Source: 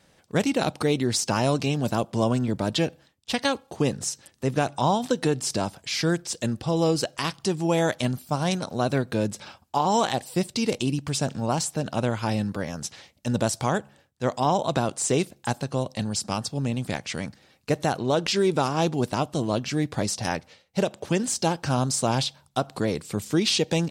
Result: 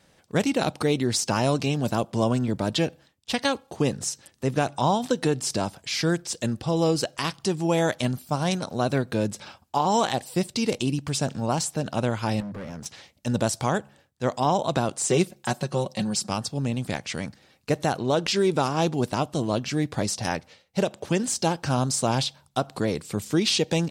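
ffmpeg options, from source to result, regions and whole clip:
-filter_complex "[0:a]asettb=1/sr,asplit=3[a][b][c];[a]atrim=end=12.404[d];[b]atrim=start=12.4:end=12.86,asetpts=PTS-STARTPTS,afade=t=in:d=0.004:c=qsin,afade=t=out:st=0.456:d=0.004:c=qsin,bandreject=f=50:t=h:w=6,bandreject=f=100:t=h:w=6,bandreject=f=150:t=h:w=6,asoftclip=type=hard:threshold=-32dB,highshelf=f=3.4k:g=-10.5[e];[c]atrim=start=12.856[f];[d][e]acrossfade=d=0.004:c1=hsin:c2=qsin[g];[g][f]acrossfade=d=0.004:c1=qsin:c2=hsin,asettb=1/sr,asplit=3[h][i][j];[h]atrim=end=15.094[k];[i]atrim=start=15.09:end=16.29,asetpts=PTS-STARTPTS,afade=t=in:d=0.004:c=qsin,afade=t=out:st=1.196:d=0.004:c=qsin,highpass=49,aecho=1:1:5.4:0.63,atrim=end_sample=52920[l];[j]atrim=start=16.286[m];[k][l]acrossfade=d=0.004:c1=hsin:c2=qsin[n];[n][m]acrossfade=d=0.004:c1=qsin:c2=hsin"

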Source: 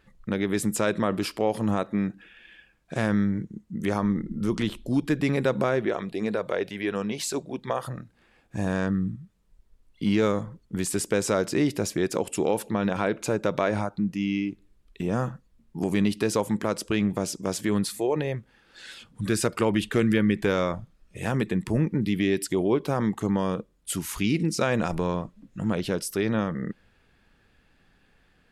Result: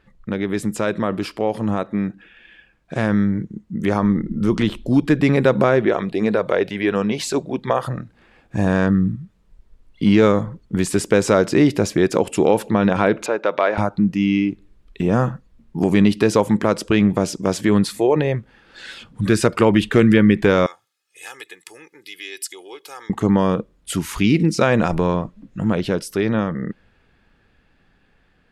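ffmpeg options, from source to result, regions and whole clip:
-filter_complex "[0:a]asettb=1/sr,asplit=3[a][b][c];[a]atrim=end=13.264[d];[b]atrim=start=13.26:end=13.78,asetpts=PTS-STARTPTS,afade=t=in:d=0.004:c=qsin,afade=t=out:st=0.516:d=0.004:c=qsin,asoftclip=type=hard:threshold=-13dB,highpass=500,lowpass=3.7k[e];[c]atrim=start=13.776[f];[d][e]acrossfade=d=0.004:c1=hsin:c2=qsin[g];[g][f]acrossfade=d=0.004:c1=qsin:c2=hsin,asettb=1/sr,asplit=3[h][i][j];[h]atrim=end=20.664[k];[i]atrim=start=20.66:end=23.1,asetpts=PTS-STARTPTS,afade=t=in:d=0.004:c=qsin,afade=t=out:st=2.436:d=0.004:c=qsin,highpass=f=410:p=1,aderivative,aecho=1:1:2.4:0.74,atrim=end_sample=107604[l];[j]atrim=start=23.096[m];[k][l]acrossfade=d=0.004:c1=hsin:c2=qsin[n];[n][m]acrossfade=d=0.004:c1=qsin:c2=hsin,lowpass=f=3.7k:p=1,dynaudnorm=f=570:g=13:m=6dB,volume=3.5dB"

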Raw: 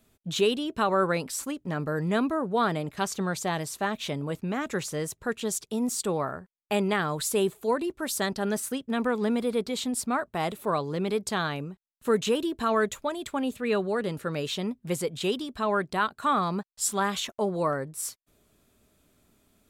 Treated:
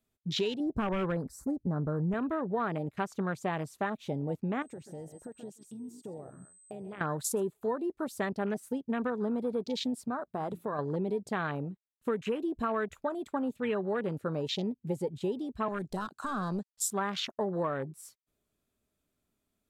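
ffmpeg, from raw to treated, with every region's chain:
-filter_complex "[0:a]asettb=1/sr,asplit=3[a][b][c];[a]atrim=end=0.604[d];[b]atrim=start=0.6:end=2.14,asetpts=PTS-STARTPTS,afade=t=in:d=0.004:c=qsin,afade=t=out:st=1.536:d=0.004:c=qsin,asuperstop=centerf=2900:order=4:qfactor=0.97,aeval=exprs='0.0944*(abs(mod(val(0)/0.0944+3,4)-2)-1)':c=same,lowshelf=f=200:g=11.5[e];[c]atrim=start=2.136[f];[d][e]acrossfade=d=0.004:c1=hsin:c2=qsin[g];[g][f]acrossfade=d=0.004:c1=qsin:c2=hsin,asettb=1/sr,asplit=3[h][i][j];[h]atrim=end=4.624[k];[i]atrim=start=4.62:end=7.01,asetpts=PTS-STARTPTS,afade=t=in:d=0.004:c=qsin,afade=t=out:st=2.386:d=0.004:c=qsin,aeval=exprs='val(0)+0.0112*sin(2*PI*8200*n/s)':c=same,aecho=1:1:129:0.237,atrim=end_sample=105399,acompressor=threshold=-37dB:ratio=16:attack=3.2:release=140:knee=1:detection=peak[l];[j]atrim=start=7.006[m];[k][l]acrossfade=d=0.004:c1=hsin:c2=qsin[n];[n][m]acrossfade=d=0.004:c1=qsin:c2=hsin,asettb=1/sr,asplit=3[o][p][q];[o]atrim=end=10.074[r];[p]atrim=start=10.07:end=10.79,asetpts=PTS-STARTPTS,afade=t=in:d=0.004:c=qsin,afade=t=out:st=0.716:d=0.004:c=qsin,bandreject=f=85.84:t=h:w=4,bandreject=f=171.68:t=h:w=4,acompressor=threshold=-29dB:ratio=6:attack=3.2:release=140:knee=1:detection=peak[s];[q]atrim=start=10.786[t];[r][s]acrossfade=d=0.004:c1=hsin:c2=qsin[u];[u][t]acrossfade=d=0.004:c1=qsin:c2=hsin,asettb=1/sr,asplit=3[v][w][x];[v]atrim=end=15.684[y];[w]atrim=start=15.68:end=16.7,asetpts=PTS-STARTPTS,afade=t=in:d=0.004:c=qsin,afade=t=out:st=1.016:d=0.004:c=qsin,equalizer=f=7k:t=o:w=1.8:g=14.5,acrossover=split=260|3000[z][aa][ab];[aa]acompressor=threshold=-31dB:ratio=4:attack=3.2:release=140:knee=2.83:detection=peak[ac];[z][ac][ab]amix=inputs=3:normalize=0,aeval=exprs='clip(val(0),-1,0.0251)':c=same[ad];[x]atrim=start=16.696[ae];[y][ad]acrossfade=d=0.004:c1=hsin:c2=qsin[af];[af][ae]acrossfade=d=0.004:c1=qsin:c2=hsin,afwtdn=0.0178,acompressor=threshold=-28dB:ratio=6"

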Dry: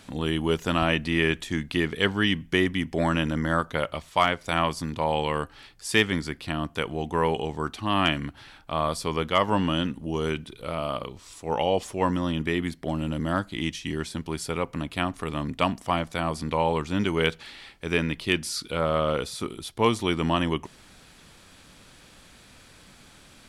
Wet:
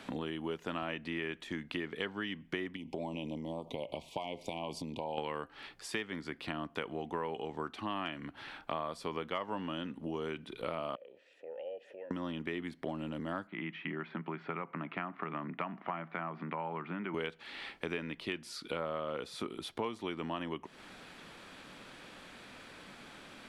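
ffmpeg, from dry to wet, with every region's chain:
-filter_complex "[0:a]asettb=1/sr,asplit=3[a][b][c];[a]atrim=end=2.764[d];[b]atrim=start=2.76:end=5.18,asetpts=PTS-STARTPTS,afade=t=in:d=0.004:c=qsin,afade=t=out:st=2.416:d=0.004:c=qsin,acompressor=threshold=-30dB:ratio=6:attack=3.2:release=140:knee=1:detection=peak,asuperstop=centerf=1500:order=8:qfactor=1.1[e];[c]atrim=start=5.176[f];[d][e]acrossfade=d=0.004:c1=hsin:c2=qsin[g];[g][f]acrossfade=d=0.004:c1=qsin:c2=hsin,asettb=1/sr,asplit=3[h][i][j];[h]atrim=end=10.954[k];[i]atrim=start=10.95:end=12.11,asetpts=PTS-STARTPTS,afade=t=in:d=0.004:c=qsin,afade=t=out:st=1.156:d=0.004:c=qsin,acompressor=threshold=-35dB:ratio=6:attack=3.2:release=140:knee=1:detection=peak,asplit=3[l][m][n];[l]bandpass=f=530:t=q:w=8,volume=0dB[o];[m]bandpass=f=1.84k:t=q:w=8,volume=-6dB[p];[n]bandpass=f=2.48k:t=q:w=8,volume=-9dB[q];[o][p][q]amix=inputs=3:normalize=0[r];[j]atrim=start=12.106[s];[k][r]acrossfade=d=0.004:c1=hsin:c2=qsin[t];[t][s]acrossfade=d=0.004:c1=qsin:c2=hsin,asettb=1/sr,asplit=3[u][v][w];[u]atrim=end=13.474[x];[v]atrim=start=13.47:end=17.14,asetpts=PTS-STARTPTS,afade=t=in:d=0.004:c=qsin,afade=t=out:st=3.666:d=0.004:c=qsin,acompressor=threshold=-30dB:ratio=2:attack=3.2:release=140:knee=1:detection=peak,highpass=f=150:w=0.5412,highpass=f=150:w=1.3066,equalizer=f=170:t=q:w=4:g=5,equalizer=f=260:t=q:w=4:g=-5,equalizer=f=490:t=q:w=4:g=-8,equalizer=f=1.3k:t=q:w=4:g=5,equalizer=f=2.1k:t=q:w=4:g=3,lowpass=f=2.4k:w=0.5412,lowpass=f=2.4k:w=1.3066[y];[w]atrim=start=17.136[z];[x][y]acrossfade=d=0.004:c1=hsin:c2=qsin[aa];[aa][z]acrossfade=d=0.004:c1=qsin:c2=hsin,acompressor=threshold=-36dB:ratio=10,acrossover=split=180 3600:gain=0.2 1 0.251[ab][ac][ad];[ab][ac][ad]amix=inputs=3:normalize=0,volume=3dB"

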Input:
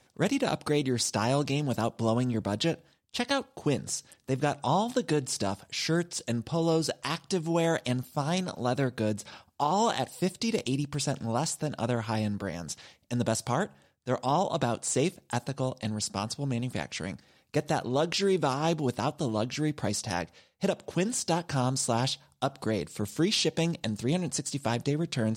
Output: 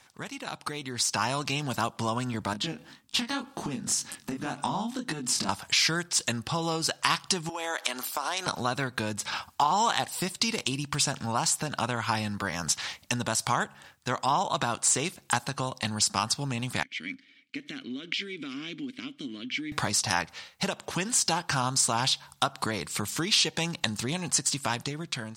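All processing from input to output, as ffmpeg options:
-filter_complex "[0:a]asettb=1/sr,asplit=3[a][b][c];[a]atrim=end=2.534[d];[b]atrim=start=2.53:end=5.49,asetpts=PTS-STARTPTS,afade=t=in:d=0.004:c=qsin,afade=t=out:st=2.956:d=0.004:c=qsin,equalizer=f=240:t=o:w=0.93:g=14.5,acompressor=threshold=-33dB:ratio=2.5:attack=3.2:release=140:knee=1:detection=peak,flanger=delay=18.5:depth=7.8:speed=1.9[e];[c]atrim=start=5.486[f];[d][e]acrossfade=d=0.004:c1=hsin:c2=qsin[g];[g][f]acrossfade=d=0.004:c1=qsin:c2=hsin,asettb=1/sr,asplit=3[h][i][j];[h]atrim=end=7.494[k];[i]atrim=start=7.49:end=8.47,asetpts=PTS-STARTPTS,afade=t=in:d=0.004:c=qsin,afade=t=out:st=0.976:d=0.004:c=qsin,highpass=f=330:w=0.5412,highpass=f=330:w=1.3066,acompressor=threshold=-38dB:ratio=5:attack=3.2:release=140:knee=1:detection=peak[l];[j]atrim=start=8.466[m];[k][l]acrossfade=d=0.004:c1=hsin:c2=qsin[n];[n][m]acrossfade=d=0.004:c1=qsin:c2=hsin,asettb=1/sr,asplit=3[o][p][q];[o]atrim=end=16.834[r];[p]atrim=start=16.83:end=19.72,asetpts=PTS-STARTPTS,afade=t=in:d=0.004:c=qsin,afade=t=out:st=2.886:d=0.004:c=qsin,lowshelf=f=140:g=-8,acompressor=threshold=-28dB:ratio=5:attack=3.2:release=140:knee=1:detection=peak,asplit=3[s][t][u];[s]bandpass=f=270:t=q:w=8,volume=0dB[v];[t]bandpass=f=2.29k:t=q:w=8,volume=-6dB[w];[u]bandpass=f=3.01k:t=q:w=8,volume=-9dB[x];[v][w][x]amix=inputs=3:normalize=0[y];[q]atrim=start=19.716[z];[r][y]acrossfade=d=0.004:c1=hsin:c2=qsin[aa];[aa][z]acrossfade=d=0.004:c1=qsin:c2=hsin,acompressor=threshold=-41dB:ratio=3,lowshelf=f=750:t=q:w=1.5:g=-8.5,dynaudnorm=f=400:g=5:m=10dB,volume=7dB"

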